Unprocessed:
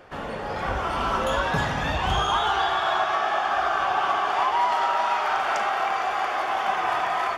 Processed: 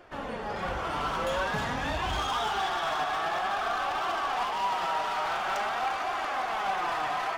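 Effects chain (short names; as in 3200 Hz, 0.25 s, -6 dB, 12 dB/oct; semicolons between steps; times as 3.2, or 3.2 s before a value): split-band echo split 720 Hz, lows 0.182 s, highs 0.351 s, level -15 dB; hard clip -22.5 dBFS, distortion -11 dB; flange 0.49 Hz, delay 2.8 ms, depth 4.1 ms, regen +45%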